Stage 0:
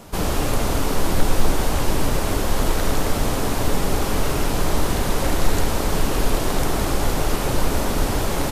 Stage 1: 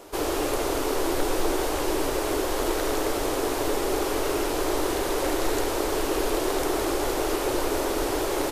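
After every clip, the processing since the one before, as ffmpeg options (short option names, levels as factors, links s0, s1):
-af "lowshelf=f=260:t=q:w=3:g=-9.5,volume=0.668"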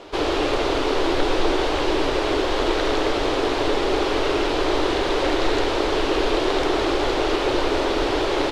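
-af "lowpass=f=3700:t=q:w=1.6,volume=1.68"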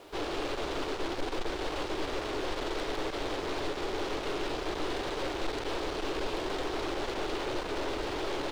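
-af "acrusher=bits=7:mix=0:aa=0.5,aeval=exprs='(tanh(14.1*val(0)+0.6)-tanh(0.6))/14.1':c=same,volume=0.447"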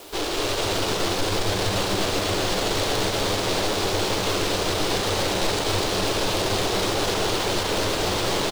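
-filter_complex "[0:a]acrossover=split=2000[s0][s1];[s1]crystalizer=i=3:c=0[s2];[s0][s2]amix=inputs=2:normalize=0,asplit=9[s3][s4][s5][s6][s7][s8][s9][s10][s11];[s4]adelay=246,afreqshift=93,volume=0.668[s12];[s5]adelay=492,afreqshift=186,volume=0.394[s13];[s6]adelay=738,afreqshift=279,volume=0.232[s14];[s7]adelay=984,afreqshift=372,volume=0.138[s15];[s8]adelay=1230,afreqshift=465,volume=0.0813[s16];[s9]adelay=1476,afreqshift=558,volume=0.0479[s17];[s10]adelay=1722,afreqshift=651,volume=0.0282[s18];[s11]adelay=1968,afreqshift=744,volume=0.0166[s19];[s3][s12][s13][s14][s15][s16][s17][s18][s19]amix=inputs=9:normalize=0,volume=2.11"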